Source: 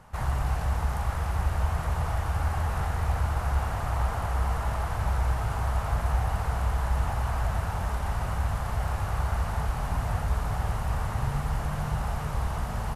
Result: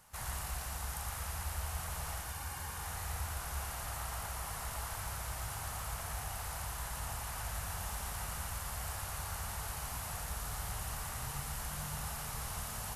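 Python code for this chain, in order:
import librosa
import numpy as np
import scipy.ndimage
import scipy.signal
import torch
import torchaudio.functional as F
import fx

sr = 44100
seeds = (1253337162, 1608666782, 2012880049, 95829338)

p1 = librosa.effects.preemphasis(x, coef=0.9, zi=[0.0])
p2 = fx.rider(p1, sr, range_db=10, speed_s=0.5)
p3 = fx.notch_comb(p2, sr, f0_hz=660.0, at=(2.21, 2.85))
p4 = p3 + fx.echo_single(p3, sr, ms=116, db=-3.5, dry=0)
y = p4 * 10.0 ** (3.5 / 20.0)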